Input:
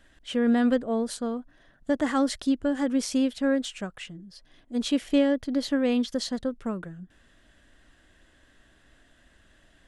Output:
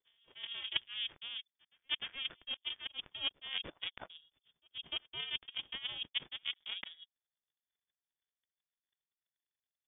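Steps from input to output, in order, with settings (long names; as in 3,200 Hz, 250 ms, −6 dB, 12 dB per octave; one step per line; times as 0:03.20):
reversed playback
downward compressor 12 to 1, threshold −36 dBFS, peak gain reduction 19 dB
reversed playback
backwards echo 300 ms −9.5 dB
power curve on the samples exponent 3
voice inversion scrambler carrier 3,500 Hz
level +11 dB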